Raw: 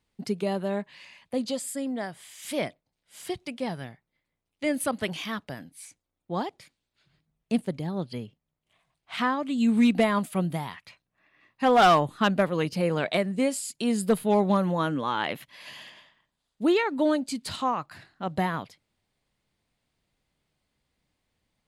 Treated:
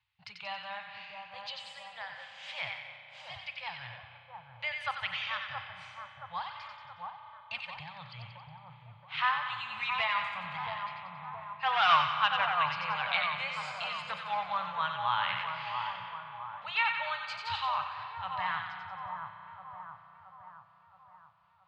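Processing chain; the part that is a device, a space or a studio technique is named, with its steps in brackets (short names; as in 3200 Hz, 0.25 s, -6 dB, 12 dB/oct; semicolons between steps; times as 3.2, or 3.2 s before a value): elliptic band-stop 110–820 Hz, stop band 70 dB; combo amplifier with spring reverb and tremolo (spring tank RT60 3.6 s, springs 33 ms, chirp 70 ms, DRR 7 dB; tremolo 4.1 Hz, depth 36%; speaker cabinet 95–4100 Hz, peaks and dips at 270 Hz +8 dB, 700 Hz -7 dB, 2600 Hz +5 dB); 6.48–7.77 comb 3.3 ms, depth 89%; split-band echo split 1300 Hz, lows 0.673 s, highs 91 ms, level -4.5 dB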